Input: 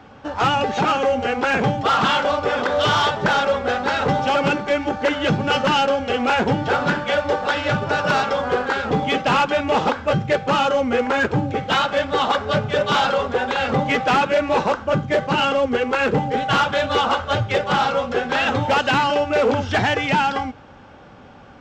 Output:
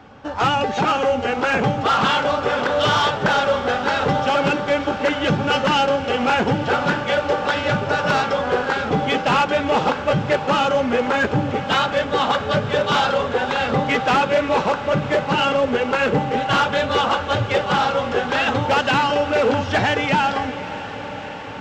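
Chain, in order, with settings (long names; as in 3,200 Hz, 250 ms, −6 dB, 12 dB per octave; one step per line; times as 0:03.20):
feedback delay with all-pass diffusion 557 ms, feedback 78%, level −14 dB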